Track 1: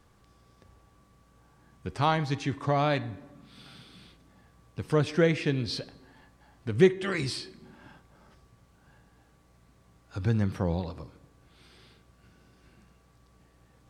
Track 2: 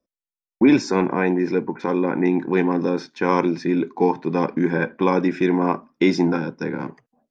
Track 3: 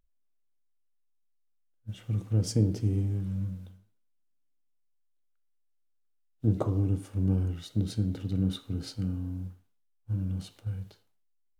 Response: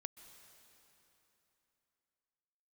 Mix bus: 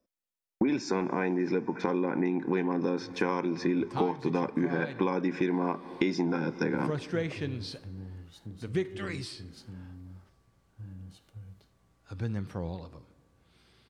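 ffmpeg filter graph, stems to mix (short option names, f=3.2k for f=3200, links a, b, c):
-filter_complex "[0:a]adelay=1950,volume=-8dB,asplit=2[a][b];[b]volume=-13.5dB[c];[1:a]volume=-1.5dB,asplit=3[d][e][f];[e]volume=-5.5dB[g];[2:a]acompressor=threshold=-38dB:ratio=2,adelay=700,volume=-7.5dB[h];[f]apad=whole_len=546705[i];[h][i]sidechaincompress=threshold=-28dB:ratio=8:attack=16:release=758[j];[3:a]atrim=start_sample=2205[k];[c][g]amix=inputs=2:normalize=0[l];[l][k]afir=irnorm=-1:irlink=0[m];[a][d][j][m]amix=inputs=4:normalize=0,acompressor=threshold=-24dB:ratio=12"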